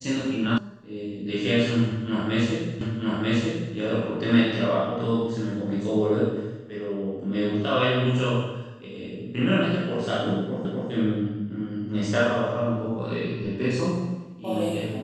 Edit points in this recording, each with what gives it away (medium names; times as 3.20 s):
0.58 s: sound stops dead
2.81 s: repeat of the last 0.94 s
10.65 s: repeat of the last 0.25 s